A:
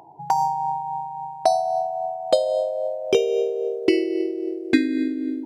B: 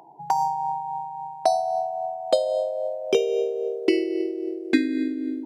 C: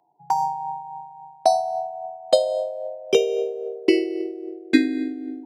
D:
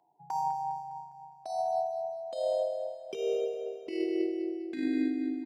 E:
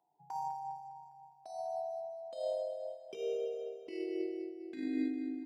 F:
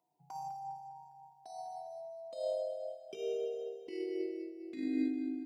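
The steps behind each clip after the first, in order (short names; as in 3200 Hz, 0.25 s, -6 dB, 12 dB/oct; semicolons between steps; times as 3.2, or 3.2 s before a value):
HPF 150 Hz 24 dB/oct; gain -2 dB
whine 730 Hz -52 dBFS; three-band expander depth 70%
negative-ratio compressor -24 dBFS, ratio -1; on a send: feedback echo 0.203 s, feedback 48%, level -10 dB; on the sum: gain -7 dB
on a send at -8 dB: reverb, pre-delay 3 ms; on the sum: noise-modulated level, depth 50%; gain -6 dB
cascading phaser rising 0.42 Hz; gain +1.5 dB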